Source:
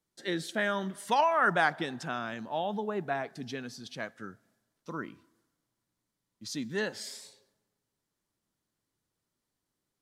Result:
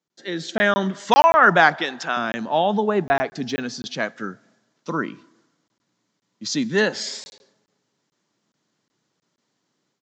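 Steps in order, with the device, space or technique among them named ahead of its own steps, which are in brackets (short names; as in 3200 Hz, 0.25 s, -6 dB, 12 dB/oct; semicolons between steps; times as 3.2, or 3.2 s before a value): call with lost packets (HPF 140 Hz 24 dB/oct; downsampling 16000 Hz; AGC gain up to 11.5 dB; packet loss); 1.76–2.17 weighting filter A; 3.26–3.68 de-esser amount 70%; gain +1.5 dB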